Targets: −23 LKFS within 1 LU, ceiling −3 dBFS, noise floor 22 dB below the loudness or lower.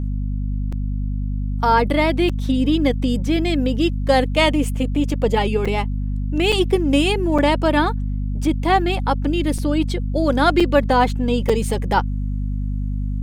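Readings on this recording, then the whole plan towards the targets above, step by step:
number of dropouts 8; longest dropout 5.2 ms; mains hum 50 Hz; hum harmonics up to 250 Hz; level of the hum −20 dBFS; integrated loudness −20.0 LKFS; sample peak −2.5 dBFS; target loudness −23.0 LKFS
→ repair the gap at 0:00.72/0:02.29/0:05.65/0:06.52/0:07.38/0:09.58/0:10.60/0:11.49, 5.2 ms
mains-hum notches 50/100/150/200/250 Hz
level −3 dB

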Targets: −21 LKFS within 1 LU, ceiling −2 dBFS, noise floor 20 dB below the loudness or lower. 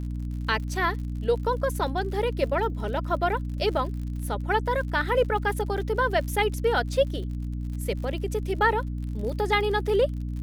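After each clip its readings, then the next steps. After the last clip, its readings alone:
crackle rate 55 per second; mains hum 60 Hz; hum harmonics up to 300 Hz; level of the hum −28 dBFS; integrated loudness −26.5 LKFS; sample peak −10.0 dBFS; target loudness −21.0 LKFS
→ click removal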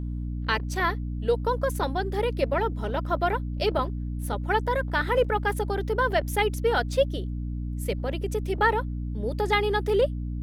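crackle rate 2.1 per second; mains hum 60 Hz; hum harmonics up to 300 Hz; level of the hum −28 dBFS
→ hum removal 60 Hz, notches 5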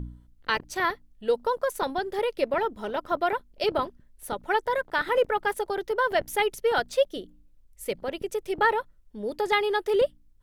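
mains hum none found; integrated loudness −27.5 LKFS; sample peak −10.5 dBFS; target loudness −21.0 LKFS
→ level +6.5 dB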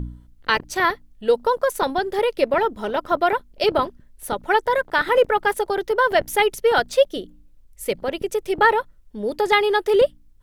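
integrated loudness −21.0 LKFS; sample peak −4.0 dBFS; background noise floor −52 dBFS

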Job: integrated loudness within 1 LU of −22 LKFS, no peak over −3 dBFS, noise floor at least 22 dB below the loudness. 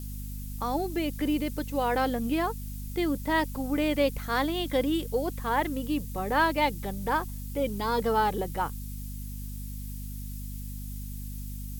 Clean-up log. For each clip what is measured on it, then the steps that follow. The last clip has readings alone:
mains hum 50 Hz; hum harmonics up to 250 Hz; level of the hum −35 dBFS; background noise floor −38 dBFS; target noise floor −52 dBFS; integrated loudness −30.0 LKFS; sample peak −11.5 dBFS; target loudness −22.0 LKFS
→ mains-hum notches 50/100/150/200/250 Hz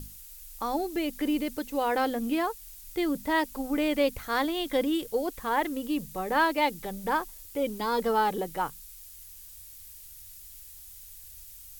mains hum none found; background noise floor −48 dBFS; target noise floor −51 dBFS
→ noise reduction from a noise print 6 dB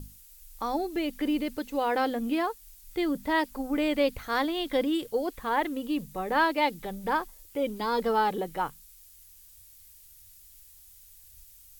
background noise floor −54 dBFS; integrated loudness −29.0 LKFS; sample peak −13.0 dBFS; target loudness −22.0 LKFS
→ level +7 dB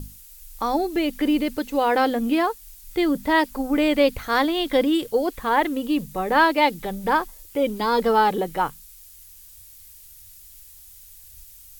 integrated loudness −22.0 LKFS; sample peak −6.0 dBFS; background noise floor −47 dBFS

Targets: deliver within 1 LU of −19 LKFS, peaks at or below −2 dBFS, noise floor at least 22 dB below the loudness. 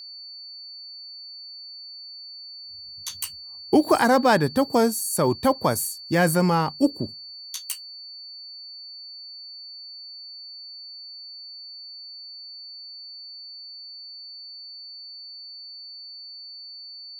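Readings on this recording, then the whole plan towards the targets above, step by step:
interfering tone 4,500 Hz; level of the tone −38 dBFS; integrated loudness −22.5 LKFS; sample peak −6.5 dBFS; target loudness −19.0 LKFS
→ notch filter 4,500 Hz, Q 30
level +3.5 dB

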